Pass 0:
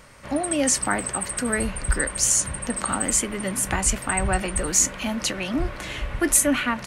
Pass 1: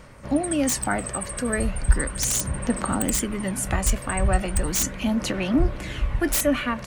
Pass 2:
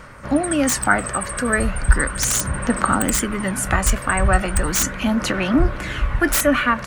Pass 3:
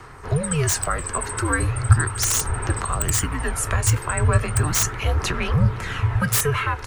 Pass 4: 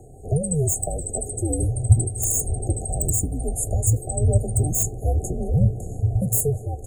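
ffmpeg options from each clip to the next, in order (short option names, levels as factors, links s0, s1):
-filter_complex "[0:a]tiltshelf=f=660:g=3.5,aphaser=in_gain=1:out_gain=1:delay=1.8:decay=0.33:speed=0.37:type=sinusoidal,acrossover=split=3400[s0][s1];[s1]aeval=exprs='(mod(5.96*val(0)+1,2)-1)/5.96':c=same[s2];[s0][s2]amix=inputs=2:normalize=0,volume=0.891"
-af "equalizer=f=1400:t=o:w=0.92:g=9,volume=1.5"
-filter_complex "[0:a]acrossover=split=230|2400[s0][s1][s2];[s1]alimiter=limit=0.2:level=0:latency=1:release=351[s3];[s0][s3][s2]amix=inputs=3:normalize=0,afreqshift=-150,volume=0.891"
-af "afftfilt=real='re*(1-between(b*sr/4096,790,6500))':imag='im*(1-between(b*sr/4096,790,6500))':win_size=4096:overlap=0.75"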